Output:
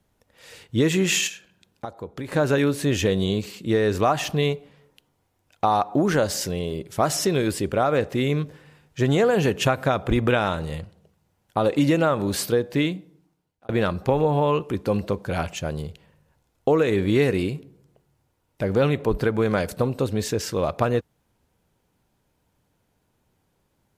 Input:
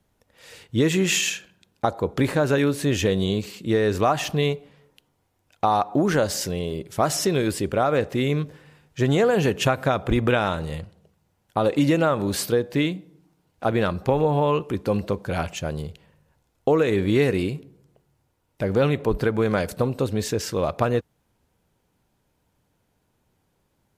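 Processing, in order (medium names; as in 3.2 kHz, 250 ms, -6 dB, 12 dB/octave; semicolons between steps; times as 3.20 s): 1.27–2.32 s: compression 2:1, threshold -40 dBFS, peak gain reduction 13 dB; 12.96–13.69 s: fade out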